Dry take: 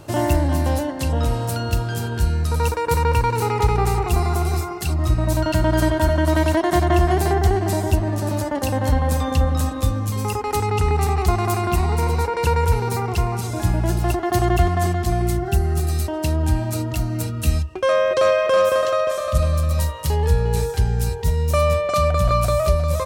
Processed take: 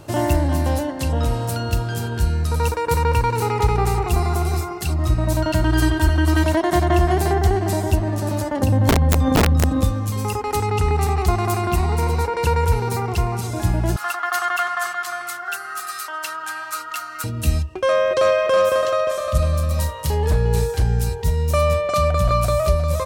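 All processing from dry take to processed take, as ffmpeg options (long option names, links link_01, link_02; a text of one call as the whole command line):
ffmpeg -i in.wav -filter_complex "[0:a]asettb=1/sr,asplit=3[link_01][link_02][link_03];[link_01]atrim=end=5.644[link_04];[link_02]atrim=start=5.64:end=6.44,asetpts=PTS-STARTPTS,afade=type=in:duration=0.004:curve=qsin,afade=type=out:start_time=0.796:duration=0.004:curve=qsin,equalizer=frequency=580:width=1.2:gain=-4,aecho=1:1:2.5:0.66,atrim=end_sample=35280[link_05];[link_03]atrim=start=6.436[link_06];[link_04][link_05]acrossfade=duration=0.004:curve1=hsin:curve2=qsin[link_07];[link_07][link_06]acrossfade=duration=0.004:curve1=qsin:curve2=hsin,asettb=1/sr,asplit=3[link_08][link_09][link_10];[link_08]atrim=end=8.594[link_11];[link_09]atrim=start=8.59:end=9.84,asetpts=PTS-STARTPTS,afade=type=in:duration=0.004:curve=qsin,afade=type=out:start_time=1.246:duration=0.004:curve=qsin,equalizer=frequency=130:width_type=o:width=2.8:gain=14.5,aeval=exprs='(mod(1.19*val(0)+1,2)-1)/1.19':channel_layout=same,acompressor=threshold=-12dB:ratio=10:attack=3.2:release=140:knee=1:detection=peak[link_12];[link_10]atrim=start=9.836[link_13];[link_11][link_12]acrossfade=duration=0.004:curve1=hsin:curve2=qsin[link_14];[link_14][link_13]acrossfade=duration=0.004:curve1=qsin:curve2=hsin,asettb=1/sr,asplit=3[link_15][link_16][link_17];[link_15]atrim=end=13.964[link_18];[link_16]atrim=start=13.96:end=17.24,asetpts=PTS-STARTPTS,afade=type=in:duration=0.004:curve=qsin,afade=type=out:start_time=3.276:duration=0.004:curve=qsin,highpass=frequency=1300:width_type=q:width=5.8,aecho=1:1:7:0.32,atrim=end_sample=144648[link_19];[link_17]atrim=start=17.236[link_20];[link_18][link_19]acrossfade=duration=0.004:curve1=hsin:curve2=qsin[link_21];[link_21][link_20]acrossfade=duration=0.004:curve1=qsin:curve2=hsin,asettb=1/sr,asplit=3[link_22][link_23][link_24];[link_22]atrim=end=19.514[link_25];[link_23]atrim=start=19.51:end=21,asetpts=PTS-STARTPTS,afade=type=in:duration=0.004:curve=qsin,afade=type=out:start_time=1.486:duration=0.004:curve=qsin,aeval=exprs='0.316*(abs(mod(val(0)/0.316+3,4)-2)-1)':channel_layout=same,asplit=2[link_26][link_27];[link_27]adelay=34,volume=-11.5dB[link_28];[link_26][link_28]amix=inputs=2:normalize=0,atrim=end_sample=65709[link_29];[link_24]atrim=start=20.996[link_30];[link_25][link_29]acrossfade=duration=0.004:curve1=hsin:curve2=qsin[link_31];[link_31][link_30]acrossfade=duration=0.004:curve1=qsin:curve2=hsin" out.wav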